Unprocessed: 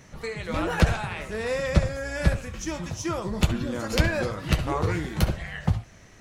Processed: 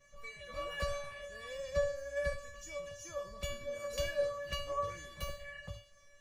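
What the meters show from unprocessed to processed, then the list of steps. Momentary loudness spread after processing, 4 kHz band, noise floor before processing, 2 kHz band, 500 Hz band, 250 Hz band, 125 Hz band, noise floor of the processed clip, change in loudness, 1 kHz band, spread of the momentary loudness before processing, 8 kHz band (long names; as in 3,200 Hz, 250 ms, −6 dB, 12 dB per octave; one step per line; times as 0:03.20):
11 LU, −9.5 dB, −51 dBFS, −12.5 dB, −7.0 dB, −28.0 dB, −23.0 dB, −63 dBFS, −12.5 dB, −11.0 dB, 8 LU, −10.0 dB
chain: tuned comb filter 570 Hz, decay 0.44 s, mix 100%
level +8 dB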